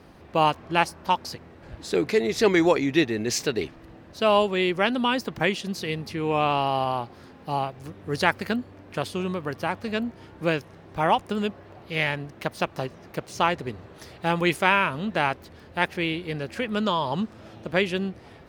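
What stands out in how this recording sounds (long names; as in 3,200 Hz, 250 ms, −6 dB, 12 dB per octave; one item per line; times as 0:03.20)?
background noise floor −49 dBFS
spectral slope −3.5 dB per octave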